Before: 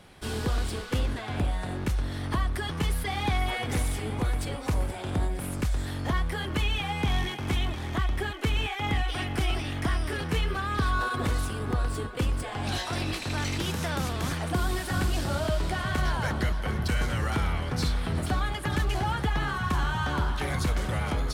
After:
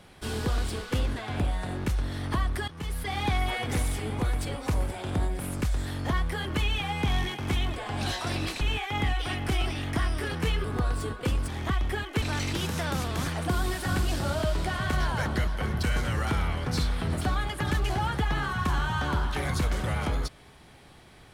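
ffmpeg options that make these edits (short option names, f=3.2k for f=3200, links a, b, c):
-filter_complex "[0:a]asplit=7[a][b][c][d][e][f][g];[a]atrim=end=2.68,asetpts=PTS-STARTPTS,afade=t=out:st=2.676:d=0.004:c=hsin:silence=0.16788[h];[b]atrim=start=2.68:end=7.762,asetpts=PTS-STARTPTS,afade=t=in:d=0.49:silence=0.16788[i];[c]atrim=start=12.418:end=13.272[j];[d]atrim=start=8.498:end=10.532[k];[e]atrim=start=11.578:end=12.422[l];[f]atrim=start=7.758:end=8.502[m];[g]atrim=start=13.268[n];[h][i]concat=n=2:v=0:a=1[o];[o][j]acrossfade=d=0.004:c1=hsin:c2=hsin[p];[p][k]acrossfade=d=0.004:c1=hsin:c2=hsin[q];[q][l]acrossfade=d=0.004:c1=hsin:c2=hsin[r];[r][m]acrossfade=d=0.004:c1=hsin:c2=hsin[s];[s][n]acrossfade=d=0.004:c1=hsin:c2=hsin"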